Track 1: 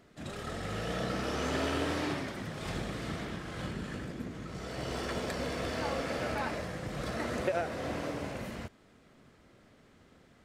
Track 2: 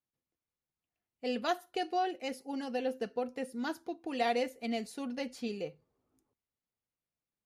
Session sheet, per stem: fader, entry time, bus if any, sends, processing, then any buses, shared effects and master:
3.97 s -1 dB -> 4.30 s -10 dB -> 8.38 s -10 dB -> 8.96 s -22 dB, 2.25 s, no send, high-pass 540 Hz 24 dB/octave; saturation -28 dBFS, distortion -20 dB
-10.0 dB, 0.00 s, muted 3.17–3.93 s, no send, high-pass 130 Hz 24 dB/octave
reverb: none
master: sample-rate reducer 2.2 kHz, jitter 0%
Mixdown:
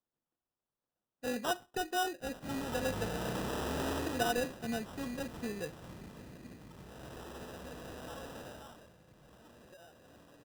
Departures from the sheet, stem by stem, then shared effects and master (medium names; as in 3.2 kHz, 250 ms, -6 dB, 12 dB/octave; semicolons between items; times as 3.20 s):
stem 1: missing high-pass 540 Hz 24 dB/octave; stem 2 -10.0 dB -> -2.0 dB